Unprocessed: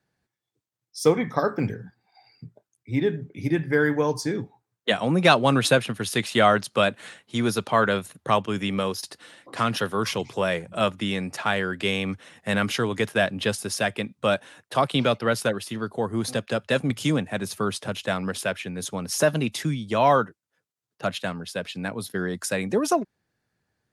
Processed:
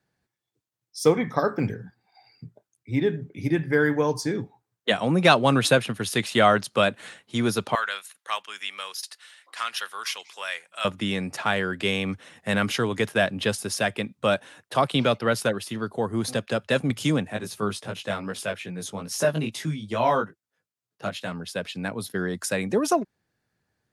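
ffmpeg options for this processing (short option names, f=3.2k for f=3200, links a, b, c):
-filter_complex "[0:a]asettb=1/sr,asplit=3[a][b][c];[a]atrim=end=7.754[d];[b]atrim=start=7.75:end=10.85,asetpts=PTS-STARTPTS,afade=t=in:d=0.004:c=qsin,afade=t=out:st=3.096:d=0.004:c=qsin,highpass=1.5k[e];[c]atrim=start=10.846[f];[d][e]acrossfade=d=0.004:c1=hsin:c2=qsin[g];[g][f]acrossfade=d=0.004:c1=qsin:c2=hsin,asplit=3[h][i][j];[h]afade=t=out:st=17.31:d=0.02[k];[i]flanger=delay=17:depth=2.6:speed=2.4,afade=t=in:st=17.31:d=0.02,afade=t=out:st=21.31:d=0.02[l];[j]afade=t=in:st=21.31:d=0.02[m];[k][l][m]amix=inputs=3:normalize=0"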